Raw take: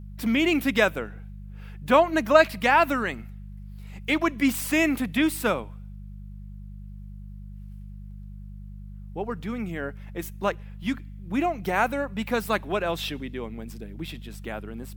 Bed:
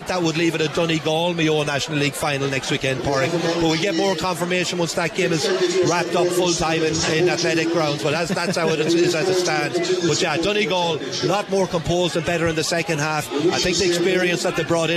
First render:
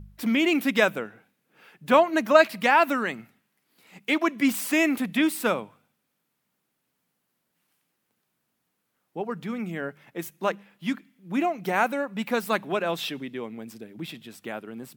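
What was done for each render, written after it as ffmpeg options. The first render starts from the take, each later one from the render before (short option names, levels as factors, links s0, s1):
-af "bandreject=f=50:t=h:w=4,bandreject=f=100:t=h:w=4,bandreject=f=150:t=h:w=4,bandreject=f=200:t=h:w=4"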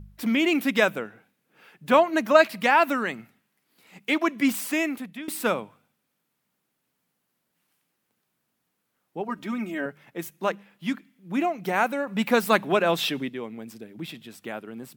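-filter_complex "[0:a]asettb=1/sr,asplit=3[s0][s1][s2];[s0]atrim=end=9.284[s3];[s1]atrim=start=9.28:end=9.86,asetpts=PTS-STARTPTS,afade=t=in:d=0.004:c=qsin,afade=t=out:st=0.576:d=0.004:c=qsin,aecho=1:1:3.2:0.88,atrim=end_sample=25578[s4];[s2]atrim=start=9.856[s5];[s3][s4]acrossfade=d=0.004:c1=hsin:c2=qsin[s6];[s6][s5]acrossfade=d=0.004:c1=qsin:c2=hsin,asplit=4[s7][s8][s9][s10];[s7]atrim=end=5.28,asetpts=PTS-STARTPTS,afade=t=out:st=4.52:d=0.76:silence=0.1[s11];[s8]atrim=start=5.28:end=12.072,asetpts=PTS-STARTPTS,afade=t=in:d=0.004:c=hsin:silence=0.1[s12];[s9]atrim=start=12.068:end=13.292,asetpts=PTS-STARTPTS,volume=1.78[s13];[s10]atrim=start=13.288[s14];[s11][s12]concat=n=2:v=0:a=1[s15];[s15][s13]acrossfade=d=0.004:c1=hsin:c2=hsin[s16];[s16][s14]acrossfade=d=0.004:c1=hsin:c2=hsin"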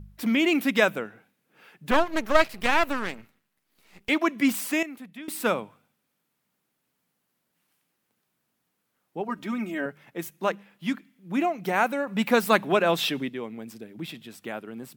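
-filter_complex "[0:a]asettb=1/sr,asplit=3[s0][s1][s2];[s0]atrim=end=1.914[s3];[s1]atrim=start=1.91:end=4.09,asetpts=PTS-STARTPTS,afade=t=in:d=0.004:c=qsin,afade=t=out:st=2.176:d=0.004:c=qsin,aeval=exprs='max(val(0),0)':c=same[s4];[s2]atrim=start=4.086[s5];[s3][s4]acrossfade=d=0.004:c1=hsin:c2=qsin[s6];[s6][s5]acrossfade=d=0.004:c1=qsin:c2=hsin,asplit=2[s7][s8];[s7]atrim=end=4.83,asetpts=PTS-STARTPTS,afade=t=out:st=4.826:d=0.004:c=hsin:silence=0.237137[s9];[s8]atrim=start=4.83,asetpts=PTS-STARTPTS,afade=t=in:d=0.66:silence=0.237137[s10];[s9][s10]concat=n=2:v=0:a=1"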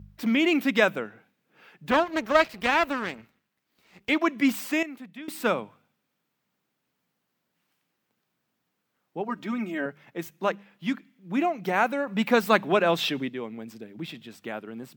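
-af "highpass=53,equalizer=f=11000:w=1.1:g=-10"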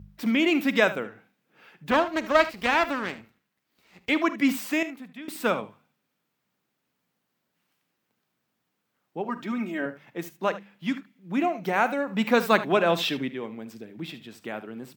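-af "aecho=1:1:46|75:0.133|0.178"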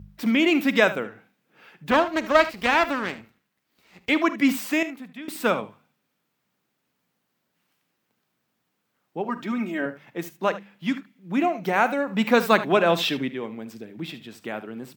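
-af "volume=1.33,alimiter=limit=0.708:level=0:latency=1"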